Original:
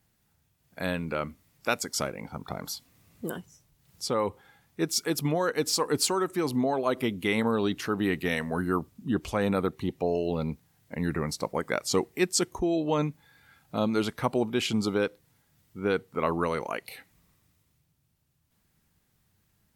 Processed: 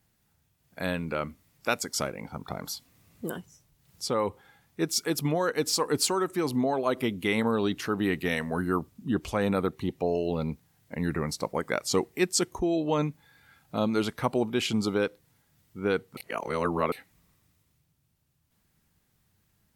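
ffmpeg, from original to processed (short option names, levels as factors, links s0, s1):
-filter_complex "[0:a]asplit=3[s0][s1][s2];[s0]atrim=end=16.172[s3];[s1]atrim=start=16.168:end=16.922,asetpts=PTS-STARTPTS,areverse[s4];[s2]atrim=start=16.918[s5];[s3][s4]acrossfade=d=0.004:c1=hsin:c2=hsin[s6];[s6][s5]acrossfade=d=0.004:c1=hsin:c2=hsin"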